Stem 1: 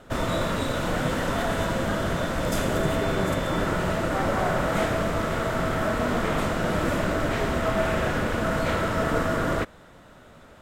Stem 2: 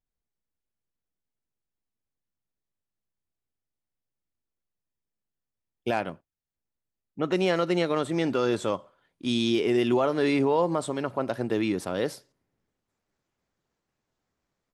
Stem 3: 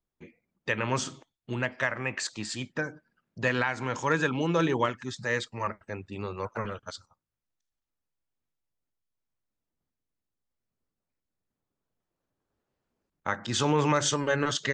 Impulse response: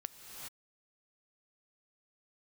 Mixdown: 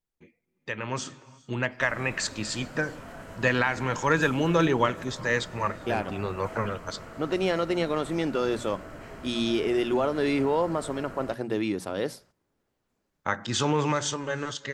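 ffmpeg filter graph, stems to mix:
-filter_complex "[0:a]bandreject=f=3600:w=5.5,adelay=1700,volume=0.133[s0];[1:a]bandreject=f=60:t=h:w=6,bandreject=f=120:t=h:w=6,bandreject=f=180:t=h:w=6,bandreject=f=240:t=h:w=6,volume=0.841[s1];[2:a]dynaudnorm=f=290:g=9:m=3.35,volume=0.447,asplit=2[s2][s3];[s3]volume=0.2[s4];[3:a]atrim=start_sample=2205[s5];[s4][s5]afir=irnorm=-1:irlink=0[s6];[s0][s1][s2][s6]amix=inputs=4:normalize=0"

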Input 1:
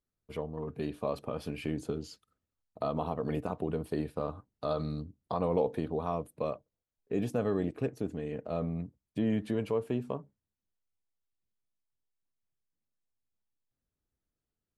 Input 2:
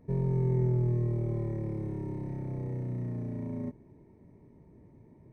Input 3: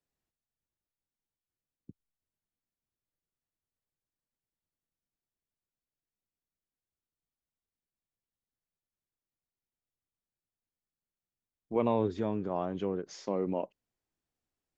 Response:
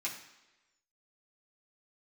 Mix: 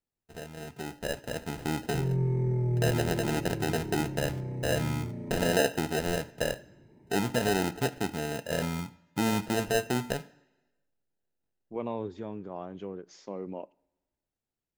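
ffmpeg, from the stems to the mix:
-filter_complex "[0:a]dynaudnorm=f=140:g=17:m=2.66,acrusher=samples=39:mix=1:aa=0.000001,volume=0.531,asplit=2[s0][s1];[s1]volume=0.237[s2];[1:a]bandreject=f=1100:w=11,adelay=1850,volume=0.841,asplit=2[s3][s4];[s4]volume=0.531[s5];[2:a]volume=0.501,asplit=2[s6][s7];[s7]volume=0.1[s8];[3:a]atrim=start_sample=2205[s9];[s2][s5][s8]amix=inputs=3:normalize=0[s10];[s10][s9]afir=irnorm=-1:irlink=0[s11];[s0][s3][s6][s11]amix=inputs=4:normalize=0"

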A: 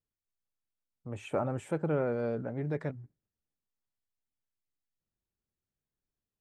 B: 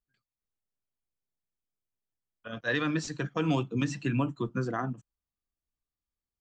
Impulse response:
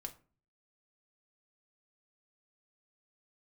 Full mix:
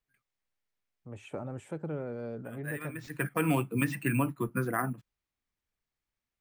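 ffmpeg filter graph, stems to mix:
-filter_complex "[0:a]acrossover=split=410|3000[s0][s1][s2];[s1]acompressor=threshold=0.0158:ratio=6[s3];[s0][s3][s2]amix=inputs=3:normalize=0,volume=0.596,asplit=2[s4][s5];[1:a]highshelf=f=3000:t=q:w=3:g=-10.5,crystalizer=i=2:c=0,acrusher=samples=4:mix=1:aa=0.000001,volume=0.944[s6];[s5]apad=whole_len=282594[s7];[s6][s7]sidechaincompress=threshold=0.00316:ratio=10:attack=16:release=259[s8];[s4][s8]amix=inputs=2:normalize=0"

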